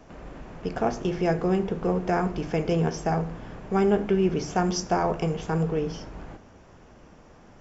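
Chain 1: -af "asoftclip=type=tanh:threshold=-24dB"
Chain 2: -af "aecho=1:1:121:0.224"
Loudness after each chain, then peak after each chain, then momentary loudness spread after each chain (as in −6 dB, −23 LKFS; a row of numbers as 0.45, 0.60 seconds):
−30.5, −26.0 LKFS; −24.0, −10.0 dBFS; 13, 16 LU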